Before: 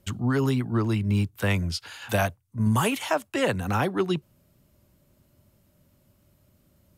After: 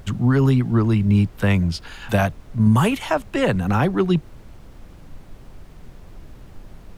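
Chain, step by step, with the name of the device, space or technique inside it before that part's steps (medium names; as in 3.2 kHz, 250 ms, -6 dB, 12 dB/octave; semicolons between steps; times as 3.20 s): car interior (peaking EQ 160 Hz +7 dB 0.99 oct; treble shelf 4.7 kHz -8 dB; brown noise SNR 18 dB); trim +4 dB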